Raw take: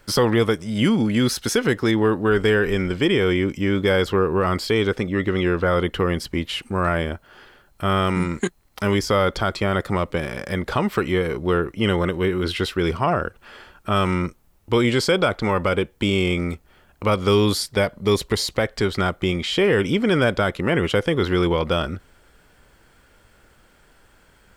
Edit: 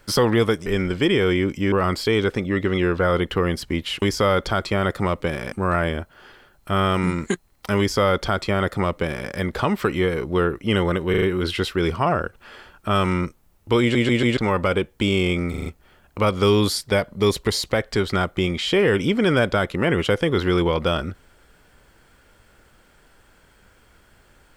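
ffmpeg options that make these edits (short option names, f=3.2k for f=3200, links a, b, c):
-filter_complex "[0:a]asplit=16[a][b][c][d][e][f][g][h][i][j][k][l][m][n][o][p];[a]atrim=end=0.662[q];[b]atrim=start=2.658:end=3.722[r];[c]atrim=start=4.348:end=6.652[s];[d]atrim=start=8.918:end=10.422[t];[e]atrim=start=6.648:end=12.272[u];[f]atrim=start=12.228:end=12.272[v];[g]atrim=start=12.228:end=12.272[w];[h]atrim=start=12.228:end=14.962[x];[i]atrim=start=14.818:end=14.962[y];[j]atrim=start=14.818:end=14.962[z];[k]atrim=start=14.818:end=14.962[aa];[l]atrim=start=15.378:end=16.552[ab];[m]atrim=start=16.508:end=16.552[ac];[n]atrim=start=16.508:end=16.552[ad];[o]atrim=start=16.508:end=16.552[ae];[p]atrim=start=16.508[af];[q][r]acrossfade=d=0.004:c1=hsin:c2=hsin[ag];[ag][s]acrossfade=d=0.004:c1=hsin:c2=hsin[ah];[ah][t]acrossfade=d=0.004:c1=hsin:c2=hsin[ai];[ai][u]acrossfade=d=0.004:c1=hsin:c2=hsin[aj];[aj][v]acrossfade=d=0.004:c1=hsin:c2=hsin[ak];[ak][w]acrossfade=d=0.004:c1=hsin:c2=hsin[al];[al][x]acrossfade=d=0.004:c1=hsin:c2=hsin[am];[am][y]acrossfade=d=0.004:c1=hsin:c2=hsin[an];[an][z]acrossfade=d=0.004:c1=hsin:c2=hsin[ao];[ao][aa]acrossfade=d=0.004:c1=hsin:c2=hsin[ap];[ap][ab]acrossfade=d=0.004:c1=hsin:c2=hsin[aq];[aq][ac]acrossfade=d=0.004:c1=hsin:c2=hsin[ar];[ar][ad]acrossfade=d=0.004:c1=hsin:c2=hsin[as];[as][ae]acrossfade=d=0.004:c1=hsin:c2=hsin[at];[at][af]acrossfade=d=0.004:c1=hsin:c2=hsin"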